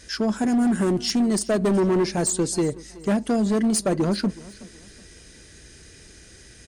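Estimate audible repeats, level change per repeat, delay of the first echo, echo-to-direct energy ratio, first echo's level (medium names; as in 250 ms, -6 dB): 2, -9.5 dB, 373 ms, -20.0 dB, -20.5 dB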